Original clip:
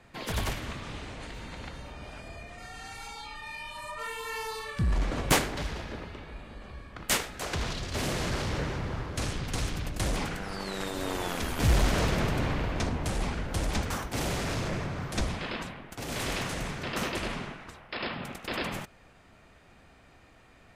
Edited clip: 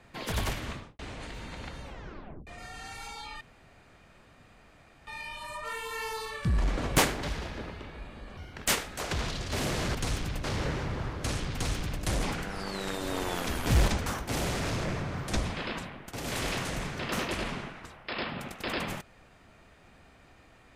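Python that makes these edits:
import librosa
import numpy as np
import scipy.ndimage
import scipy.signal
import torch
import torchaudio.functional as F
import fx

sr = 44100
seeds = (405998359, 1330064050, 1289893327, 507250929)

y = fx.studio_fade_out(x, sr, start_s=0.7, length_s=0.29)
y = fx.edit(y, sr, fx.tape_stop(start_s=1.84, length_s=0.63),
    fx.insert_room_tone(at_s=3.41, length_s=1.66),
    fx.speed_span(start_s=6.71, length_s=0.36, speed=1.29),
    fx.duplicate(start_s=9.46, length_s=0.49, to_s=8.37),
    fx.cut(start_s=11.81, length_s=1.91), tone=tone)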